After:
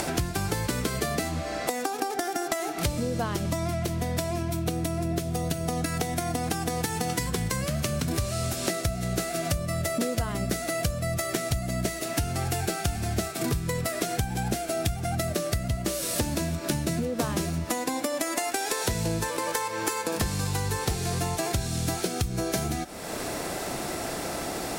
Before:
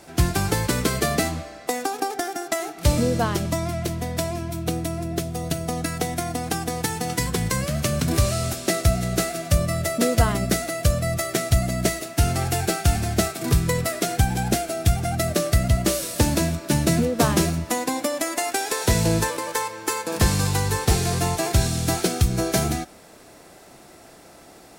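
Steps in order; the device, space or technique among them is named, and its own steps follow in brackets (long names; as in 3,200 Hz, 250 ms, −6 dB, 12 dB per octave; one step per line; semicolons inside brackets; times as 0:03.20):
upward and downward compression (upward compression, threshold −21 dBFS; downward compressor, threshold −27 dBFS, peak gain reduction 14 dB)
level +2 dB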